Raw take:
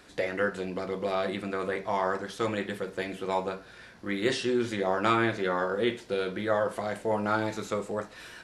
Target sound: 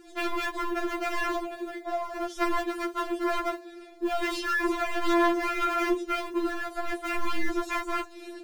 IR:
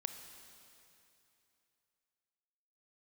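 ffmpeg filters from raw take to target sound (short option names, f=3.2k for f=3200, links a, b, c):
-filter_complex "[0:a]lowshelf=f=720:t=q:w=1.5:g=12.5,asettb=1/sr,asplit=3[a][b][c];[a]atrim=end=1.424[d];[b]atrim=start=1.42:end=2.16,asetpts=PTS-STARTPTS,afade=t=in:d=0.004:c=qsin,afade=t=out:st=0.736:d=0.004:c=qsin,acrossover=split=1100|3100[e][f][g];[e]acompressor=threshold=-27dB:ratio=4[h];[f]acompressor=threshold=-38dB:ratio=4[i];[g]acompressor=threshold=-55dB:ratio=4[j];[h][i][j]amix=inputs=3:normalize=0[k];[c]atrim=start=2.156[l];[d][k]acrossfade=d=0.004:c1=hsin:c2=qsin[m];[m][l]acrossfade=d=0.004:c1=qsin:c2=hsin,asplit=3[n][o][p];[n]afade=t=out:st=4.62:d=0.02[q];[o]bandreject=f=60:t=h:w=6,bandreject=f=120:t=h:w=6,bandreject=f=180:t=h:w=6,bandreject=f=240:t=h:w=6,bandreject=f=300:t=h:w=6,bandreject=f=360:t=h:w=6,bandreject=f=420:t=h:w=6,bandreject=f=480:t=h:w=6,bandreject=f=540:t=h:w=6,afade=t=in:st=4.62:d=0.02,afade=t=out:st=5.51:d=0.02[r];[p]afade=t=in:st=5.51:d=0.02[s];[q][r][s]amix=inputs=3:normalize=0,alimiter=limit=-9dB:level=0:latency=1:release=13,asettb=1/sr,asplit=3[t][u][v];[t]atrim=end=6.204[w];[u]atrim=start=6.2:end=6.88,asetpts=PTS-STARTPTS,afade=t=in:d=0.004:c=qsin,afade=t=out:st=0.676:d=0.004:c=qsin,acompressor=threshold=-18dB:ratio=16[x];[v]atrim=start=6.876[y];[w][x]acrossfade=d=0.004:c1=hsin:c2=qsin[z];[z][y]acrossfade=d=0.004:c1=qsin:c2=hsin,acrusher=bits=9:mode=log:mix=0:aa=0.000001,aeval=exprs='0.0944*(abs(mod(val(0)/0.0944+3,4)-2)-1)':c=same,afftfilt=real='re*4*eq(mod(b,16),0)':imag='im*4*eq(mod(b,16),0)':win_size=2048:overlap=0.75"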